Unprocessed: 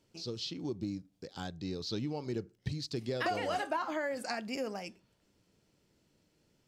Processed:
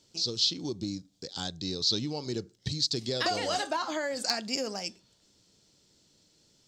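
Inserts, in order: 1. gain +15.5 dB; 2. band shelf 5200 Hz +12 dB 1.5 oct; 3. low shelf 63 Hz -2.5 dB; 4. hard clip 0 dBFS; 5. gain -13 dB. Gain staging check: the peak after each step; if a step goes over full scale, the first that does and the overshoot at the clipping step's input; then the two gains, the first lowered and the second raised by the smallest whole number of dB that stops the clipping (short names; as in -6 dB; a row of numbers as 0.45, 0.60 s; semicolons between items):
-5.0, +5.0, +5.0, 0.0, -13.0 dBFS; step 2, 5.0 dB; step 1 +10.5 dB, step 5 -8 dB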